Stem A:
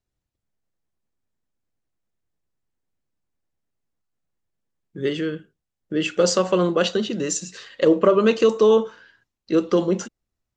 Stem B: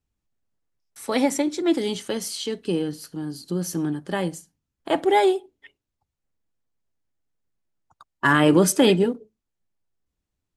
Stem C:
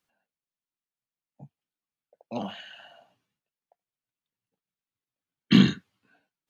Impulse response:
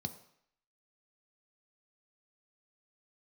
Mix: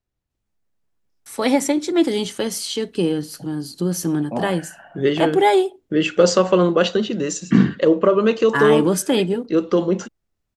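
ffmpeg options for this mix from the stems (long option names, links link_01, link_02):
-filter_complex "[0:a]highshelf=frequency=4700:gain=-7,volume=1dB[link_01];[1:a]adelay=300,volume=-1dB[link_02];[2:a]lowpass=frequency=1900:width=0.5412,lowpass=frequency=1900:width=1.3066,adelay=2000,volume=2.5dB[link_03];[link_01][link_02][link_03]amix=inputs=3:normalize=0,dynaudnorm=framelen=310:gausssize=7:maxgain=6dB"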